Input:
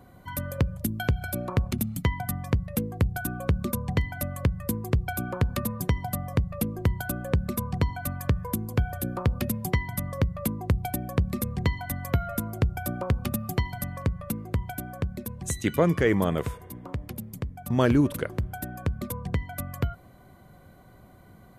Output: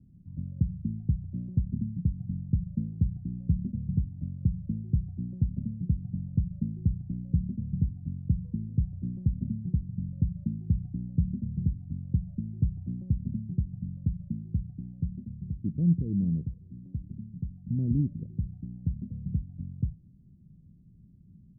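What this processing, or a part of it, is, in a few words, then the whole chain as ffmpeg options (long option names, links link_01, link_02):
the neighbour's flat through the wall: -af "lowpass=frequency=230:width=0.5412,lowpass=frequency=230:width=1.3066,equalizer=frequency=170:width_type=o:width=0.47:gain=6,volume=-3dB"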